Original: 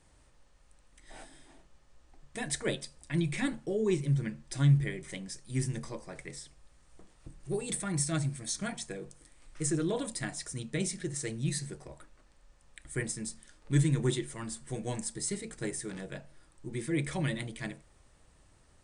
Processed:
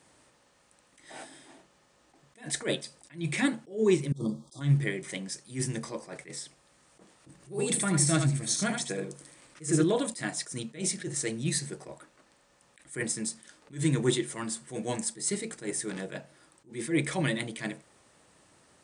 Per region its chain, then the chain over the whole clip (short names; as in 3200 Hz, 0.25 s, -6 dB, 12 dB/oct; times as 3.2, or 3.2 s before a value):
4.12–4.61 brick-wall FIR band-stop 1300–3200 Hz + negative-ratio compressor -34 dBFS, ratio -0.5
7.35–9.84 upward compressor, threshold -50 dBFS + bell 130 Hz +4 dB 1.3 oct + echo 78 ms -5.5 dB
whole clip: HPF 180 Hz 12 dB/oct; attack slew limiter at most 190 dB/s; gain +6 dB